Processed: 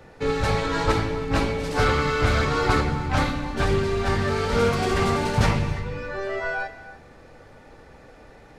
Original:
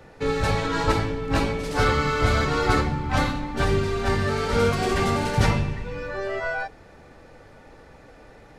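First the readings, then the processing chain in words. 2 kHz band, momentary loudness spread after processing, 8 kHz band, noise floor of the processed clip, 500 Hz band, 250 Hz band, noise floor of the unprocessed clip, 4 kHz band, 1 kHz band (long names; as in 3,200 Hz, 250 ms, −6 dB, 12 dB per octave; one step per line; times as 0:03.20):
+0.5 dB, 7 LU, −0.5 dB, −49 dBFS, +0.5 dB, 0.0 dB, −49 dBFS, 0.0 dB, 0.0 dB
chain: reverb whose tail is shaped and stops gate 360 ms flat, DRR 11 dB
highs frequency-modulated by the lows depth 0.28 ms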